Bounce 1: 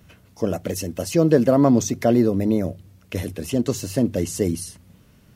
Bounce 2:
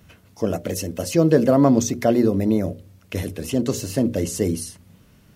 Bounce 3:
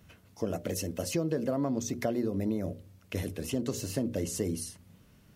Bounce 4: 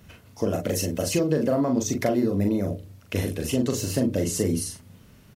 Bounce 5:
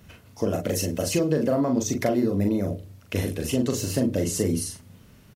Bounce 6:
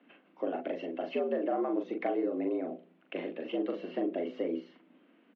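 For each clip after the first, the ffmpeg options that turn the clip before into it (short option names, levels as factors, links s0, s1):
-af "bandreject=f=60:t=h:w=6,bandreject=f=120:t=h:w=6,bandreject=f=180:t=h:w=6,bandreject=f=240:t=h:w=6,bandreject=f=300:t=h:w=6,bandreject=f=360:t=h:w=6,bandreject=f=420:t=h:w=6,bandreject=f=480:t=h:w=6,bandreject=f=540:t=h:w=6,bandreject=f=600:t=h:w=6,volume=1.12"
-af "acompressor=threshold=0.1:ratio=6,volume=0.473"
-filter_complex "[0:a]asplit=2[s0][s1];[s1]adelay=40,volume=0.562[s2];[s0][s2]amix=inputs=2:normalize=0,volume=2.11"
-filter_complex "[0:a]asplit=2[s0][s1];[s1]adelay=105,volume=0.0355,highshelf=f=4000:g=-2.36[s2];[s0][s2]amix=inputs=2:normalize=0"
-af "highpass=f=160:t=q:w=0.5412,highpass=f=160:t=q:w=1.307,lowpass=f=3000:t=q:w=0.5176,lowpass=f=3000:t=q:w=0.7071,lowpass=f=3000:t=q:w=1.932,afreqshift=78,volume=0.398"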